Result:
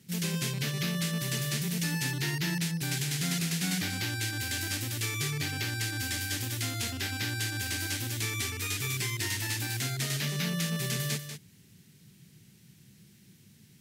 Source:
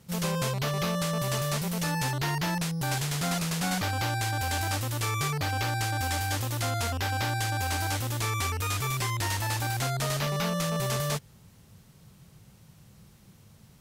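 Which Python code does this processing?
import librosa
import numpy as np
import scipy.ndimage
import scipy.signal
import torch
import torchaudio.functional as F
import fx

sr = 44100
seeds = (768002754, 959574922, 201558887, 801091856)

y = scipy.signal.sosfilt(scipy.signal.butter(2, 140.0, 'highpass', fs=sr, output='sos'), x)
y = fx.band_shelf(y, sr, hz=810.0, db=-14.0, octaves=1.7)
y = y + 10.0 ** (-9.0 / 20.0) * np.pad(y, (int(191 * sr / 1000.0), 0))[:len(y)]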